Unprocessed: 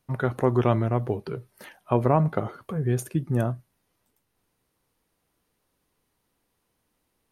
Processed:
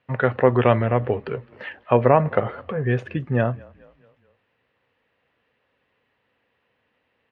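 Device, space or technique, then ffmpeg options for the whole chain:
frequency-shifting delay pedal into a guitar cabinet: -filter_complex "[0:a]asplit=5[link_01][link_02][link_03][link_04][link_05];[link_02]adelay=213,afreqshift=-35,volume=-24dB[link_06];[link_03]adelay=426,afreqshift=-70,volume=-29.2dB[link_07];[link_04]adelay=639,afreqshift=-105,volume=-34.4dB[link_08];[link_05]adelay=852,afreqshift=-140,volume=-39.6dB[link_09];[link_01][link_06][link_07][link_08][link_09]amix=inputs=5:normalize=0,highpass=100,equalizer=frequency=170:width_type=q:width=4:gain=-8,equalizer=frequency=330:width_type=q:width=4:gain=-7,equalizer=frequency=510:width_type=q:width=4:gain=6,equalizer=frequency=1800:width_type=q:width=4:gain=9,equalizer=frequency=2700:width_type=q:width=4:gain=7,lowpass=frequency=3400:width=0.5412,lowpass=frequency=3400:width=1.3066,volume=5dB"

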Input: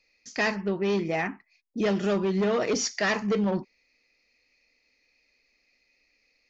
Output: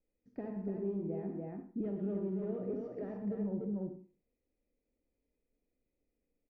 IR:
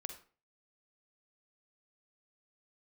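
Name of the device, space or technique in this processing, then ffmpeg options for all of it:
television next door: -filter_complex "[0:a]asettb=1/sr,asplit=3[link_01][link_02][link_03];[link_01]atrim=end=1.834[link_04];[link_02]atrim=start=1.83:end=2.61,asetpts=PTS-STARTPTS,afade=type=in:duration=0.004:curve=qsin,afade=type=out:start_time=0.776:duration=0.004:curve=qsin,equalizer=frequency=2700:width_type=o:width=2:gain=7.5[link_05];[link_03]atrim=start=2.606[link_06];[link_04][link_05]acrossfade=duration=0.004:curve1=hsin:curve2=qsin[link_07];[link_07][link_06]acrossfade=duration=0.004:curve1=qsin:curve2=hsin,aecho=1:1:113.7|291.5:0.251|0.562,acompressor=threshold=-29dB:ratio=5,lowpass=390[link_08];[1:a]atrim=start_sample=2205[link_09];[link_08][link_09]afir=irnorm=-1:irlink=0,bandreject=frequency=1100:width=9.3"

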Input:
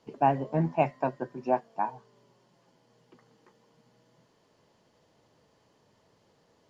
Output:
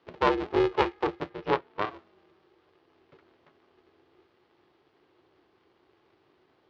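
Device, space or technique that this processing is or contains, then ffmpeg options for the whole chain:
ring modulator pedal into a guitar cabinet: -filter_complex "[0:a]aeval=exprs='val(0)*sgn(sin(2*PI*210*n/s))':channel_layout=same,highpass=110,equalizer=frequency=220:width_type=q:width=4:gain=-8,equalizer=frequency=360:width_type=q:width=4:gain=9,equalizer=frequency=660:width_type=q:width=4:gain=-5,lowpass=frequency=4000:width=0.5412,lowpass=frequency=4000:width=1.3066,asettb=1/sr,asplit=3[link_01][link_02][link_03];[link_01]atrim=end=1.304[link_04];[link_02]atrim=start=1.3:end=1.9,asetpts=PTS-STARTPTS,afade=type=in:duration=0.004:curve=qsin,afade=type=out:start_time=0.596:duration=0.004:curve=qsin,lowpass=5000[link_05];[link_03]atrim=start=1.896[link_06];[link_04][link_05]acrossfade=duration=0.004:curve1=hsin:curve2=qsin[link_07];[link_07][link_06]acrossfade=duration=0.004:curve1=qsin:curve2=hsin"

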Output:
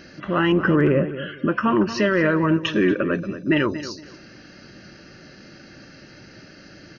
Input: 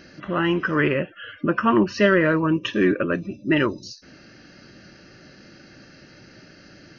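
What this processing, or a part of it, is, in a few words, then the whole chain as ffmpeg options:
clipper into limiter: -filter_complex "[0:a]asettb=1/sr,asplit=3[link_01][link_02][link_03];[link_01]atrim=end=0.524[link_04];[link_02]atrim=start=0.52:end=1.09,asetpts=PTS-STARTPTS,afade=type=in:duration=0.004:curve=qsin,afade=type=out:start_time=0.566:duration=0.004:curve=qsin,tiltshelf=frequency=1400:gain=9[link_05];[link_03]atrim=start=1.086[link_06];[link_04][link_05]acrossfade=duration=0.004:curve1=hsin:curve2=qsin[link_07];[link_07][link_06]acrossfade=duration=0.004:curve1=qsin:curve2=hsin,asoftclip=type=hard:threshold=-5dB,alimiter=limit=-12.5dB:level=0:latency=1:release=82,asplit=2[link_08][link_09];[link_09]adelay=231,lowpass=frequency=2900:poles=1,volume=-12.5dB,asplit=2[link_10][link_11];[link_11]adelay=231,lowpass=frequency=2900:poles=1,volume=0.25,asplit=2[link_12][link_13];[link_13]adelay=231,lowpass=frequency=2900:poles=1,volume=0.25[link_14];[link_08][link_10][link_12][link_14]amix=inputs=4:normalize=0,volume=2.5dB"

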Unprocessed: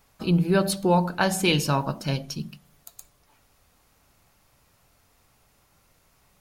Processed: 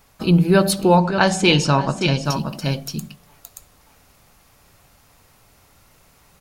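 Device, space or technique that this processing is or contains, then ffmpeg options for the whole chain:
ducked delay: -filter_complex "[0:a]asplit=3[link_01][link_02][link_03];[link_02]adelay=577,volume=-2dB[link_04];[link_03]apad=whole_len=308080[link_05];[link_04][link_05]sidechaincompress=threshold=-36dB:ratio=10:attack=12:release=145[link_06];[link_01][link_06]amix=inputs=2:normalize=0,asettb=1/sr,asplit=3[link_07][link_08][link_09];[link_07]atrim=end=0.964[link_10];[link_08]atrim=start=0.96:end=2.25,asetpts=PTS-STARTPTS,afade=type=in:duration=0.004:curve=qsin,afade=type=out:start_time=1.286:duration=0.004:curve=qsin,lowpass=frequency=7900:width=0.5412,lowpass=frequency=7900:width=1.3066[link_11];[link_09]atrim=start=2.246[link_12];[link_10][link_11]acrossfade=duration=0.004:curve1=hsin:curve2=qsin[link_13];[link_13][link_12]acrossfade=duration=0.004:curve1=qsin:curve2=hsin,volume=6.5dB"

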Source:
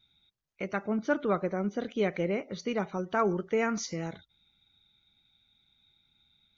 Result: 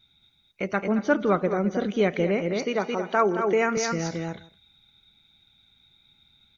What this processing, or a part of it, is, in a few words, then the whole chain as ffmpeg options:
ducked delay: -filter_complex "[0:a]asettb=1/sr,asplit=3[link_01][link_02][link_03];[link_01]atrim=end=2.414[link_04];[link_02]atrim=start=2.41:end=3.77,asetpts=PTS-STARTPTS,afade=type=in:duration=0.004:curve=qsin,afade=type=out:start_time=1.356:duration=0.004:curve=qsin,highpass=270[link_05];[link_03]atrim=start=3.766[link_06];[link_04][link_05]acrossfade=duration=0.004:curve1=hsin:curve2=qsin[link_07];[link_07][link_06]acrossfade=duration=0.004:curve1=qsin:curve2=hsin,asplit=3[link_08][link_09][link_10];[link_09]adelay=220,volume=-2dB[link_11];[link_10]apad=whole_len=299788[link_12];[link_11][link_12]sidechaincompress=threshold=-38dB:ratio=8:attack=25:release=114[link_13];[link_08][link_13]amix=inputs=2:normalize=0,aecho=1:1:162:0.0944,volume=6dB"

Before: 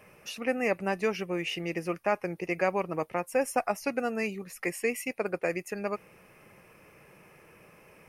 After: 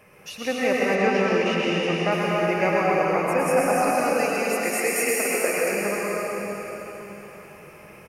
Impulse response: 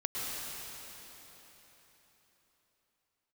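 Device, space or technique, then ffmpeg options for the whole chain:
cave: -filter_complex "[0:a]asettb=1/sr,asplit=3[link_01][link_02][link_03];[link_01]atrim=end=3.894[link_04];[link_02]atrim=start=3.89:end=5.58,asetpts=PTS-STARTPTS,afade=type=in:duration=0.004:curve=qsin,afade=type=out:start_time=1.686:duration=0.004:curve=qsin,bass=frequency=250:gain=-13,treble=frequency=4000:gain=8[link_05];[link_03]atrim=start=5.576[link_06];[link_04][link_05]acrossfade=duration=0.004:curve1=hsin:curve2=qsin[link_07];[link_07][link_06]acrossfade=duration=0.004:curve1=qsin:curve2=hsin,aecho=1:1:245:0.376[link_08];[1:a]atrim=start_sample=2205[link_09];[link_08][link_09]afir=irnorm=-1:irlink=0,asettb=1/sr,asplit=3[link_10][link_11][link_12];[link_10]atrim=end=0.954[link_13];[link_11]atrim=start=0.95:end=2.12,asetpts=PTS-STARTPTS,afade=type=in:duration=0.004:curve=qsin,afade=type=out:start_time=1.166:duration=0.004:curve=qsin,lowpass=7000[link_14];[link_12]atrim=start=2.116[link_15];[link_13][link_14]acrossfade=duration=0.004:curve1=hsin:curve2=qsin[link_16];[link_16][link_15]acrossfade=duration=0.004:curve1=qsin:curve2=hsin,volume=3dB"

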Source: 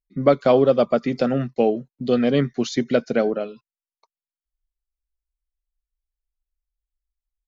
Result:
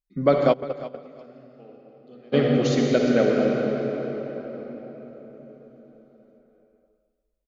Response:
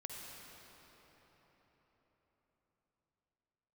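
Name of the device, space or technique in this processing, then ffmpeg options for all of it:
cave: -filter_complex "[0:a]aecho=1:1:168:0.188[link_01];[1:a]atrim=start_sample=2205[link_02];[link_01][link_02]afir=irnorm=-1:irlink=0,asplit=3[link_03][link_04][link_05];[link_03]afade=type=out:start_time=0.52:duration=0.02[link_06];[link_04]agate=range=-28dB:threshold=-14dB:ratio=16:detection=peak,afade=type=in:start_time=0.52:duration=0.02,afade=type=out:start_time=2.32:duration=0.02[link_07];[link_05]afade=type=in:start_time=2.32:duration=0.02[link_08];[link_06][link_07][link_08]amix=inputs=3:normalize=0,aecho=1:1:351|702:0.158|0.0333,volume=3dB"

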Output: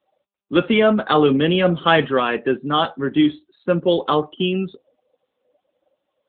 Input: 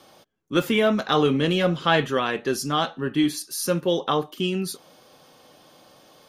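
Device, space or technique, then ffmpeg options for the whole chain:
mobile call with aggressive noise cancelling: -af "highpass=150,afftdn=noise_reduction=29:noise_floor=-39,volume=5.5dB" -ar 8000 -c:a libopencore_amrnb -b:a 10200

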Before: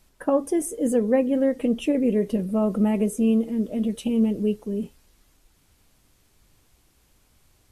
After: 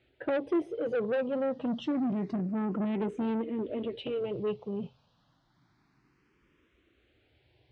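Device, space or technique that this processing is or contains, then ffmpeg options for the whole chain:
barber-pole phaser into a guitar amplifier: -filter_complex "[0:a]asettb=1/sr,asplit=3[link_01][link_02][link_03];[link_01]atrim=end=1.674[link_04];[link_02]atrim=start=1.67:end=2.31,asetpts=PTS-STARTPTS,afade=type=in:duration=0.004:curve=qsin,afade=type=out:start_time=0.636:duration=0.004:curve=qsin,equalizer=frequency=4600:width=0.89:gain=6[link_05];[link_03]atrim=start=2.306[link_06];[link_04][link_05]acrossfade=duration=0.004:curve1=hsin:curve2=qsin[link_07];[link_07][link_06]acrossfade=duration=0.004:curve1=qsin:curve2=hsin,asplit=2[link_08][link_09];[link_09]afreqshift=0.28[link_10];[link_08][link_10]amix=inputs=2:normalize=1,asoftclip=type=tanh:threshold=-26dB,highpass=94,equalizer=frequency=130:width_type=q:width=4:gain=7,equalizer=frequency=210:width_type=q:width=4:gain=-3,equalizer=frequency=350:width_type=q:width=4:gain=4,lowpass=frequency=3800:width=0.5412,lowpass=frequency=3800:width=1.3066"

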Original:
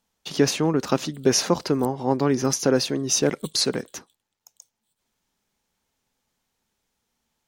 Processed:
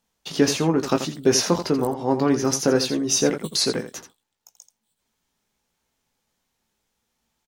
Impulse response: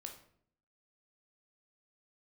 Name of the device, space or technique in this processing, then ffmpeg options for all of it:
slapback doubling: -filter_complex "[0:a]asplit=3[link_01][link_02][link_03];[link_02]adelay=18,volume=-7dB[link_04];[link_03]adelay=84,volume=-10.5dB[link_05];[link_01][link_04][link_05]amix=inputs=3:normalize=0"

